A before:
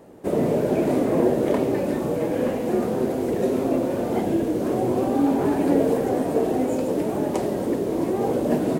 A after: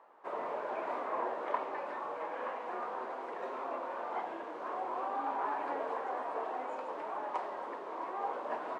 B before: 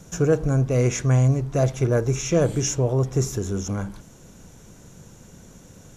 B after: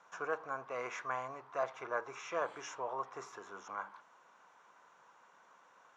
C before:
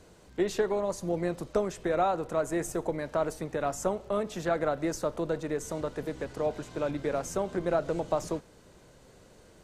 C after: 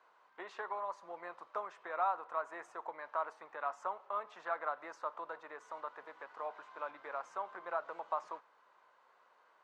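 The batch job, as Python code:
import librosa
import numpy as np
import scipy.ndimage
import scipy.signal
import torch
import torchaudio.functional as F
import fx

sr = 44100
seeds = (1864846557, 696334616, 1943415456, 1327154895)

y = fx.ladder_bandpass(x, sr, hz=1200.0, resonance_pct=55)
y = y * 10.0 ** (5.5 / 20.0)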